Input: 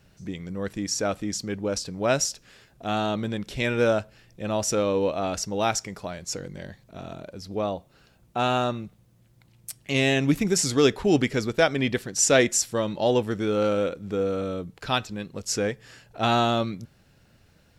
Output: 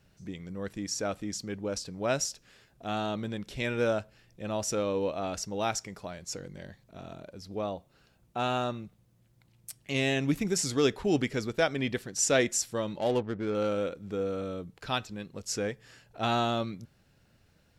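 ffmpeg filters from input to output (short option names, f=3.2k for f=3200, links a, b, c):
-filter_complex "[0:a]asettb=1/sr,asplit=3[a][b][c];[a]atrim=end=12.994[d];[b]atrim=start=12.99:end=13.55,asetpts=PTS-STARTPTS,afade=t=in:d=0.004:c=qsin,afade=t=out:st=0.556:d=0.004:c=qsin,adynamicsmooth=sensitivity=3.5:basefreq=900[e];[c]atrim=start=13.546[f];[d][e]acrossfade=d=0.004:c1=hsin:c2=qsin[g];[g][f]acrossfade=d=0.004:c1=qsin:c2=hsin,volume=-6dB"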